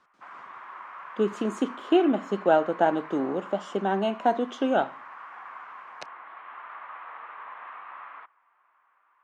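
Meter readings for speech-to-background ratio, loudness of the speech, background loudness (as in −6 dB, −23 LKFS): 16.5 dB, −26.0 LKFS, −42.5 LKFS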